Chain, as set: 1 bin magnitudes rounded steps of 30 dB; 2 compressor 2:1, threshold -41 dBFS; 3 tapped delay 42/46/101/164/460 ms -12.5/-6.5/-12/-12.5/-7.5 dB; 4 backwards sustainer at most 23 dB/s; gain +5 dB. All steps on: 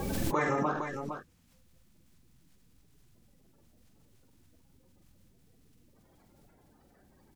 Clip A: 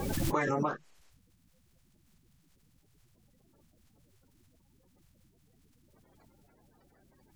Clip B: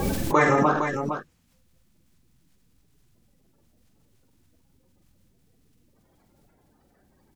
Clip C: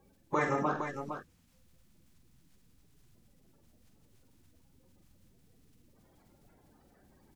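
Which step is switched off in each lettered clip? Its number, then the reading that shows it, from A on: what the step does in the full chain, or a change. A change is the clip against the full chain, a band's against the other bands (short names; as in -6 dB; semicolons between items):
3, momentary loudness spread change -4 LU; 2, mean gain reduction 8.5 dB; 4, 8 kHz band -7.0 dB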